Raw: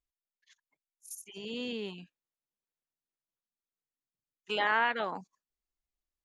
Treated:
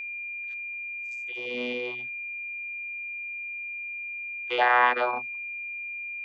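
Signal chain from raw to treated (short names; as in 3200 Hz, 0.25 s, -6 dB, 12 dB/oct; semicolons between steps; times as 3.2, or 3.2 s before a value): three-band isolator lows -19 dB, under 490 Hz, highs -24 dB, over 5500 Hz; vocoder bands 16, saw 123 Hz; whine 2400 Hz -42 dBFS; gain +9 dB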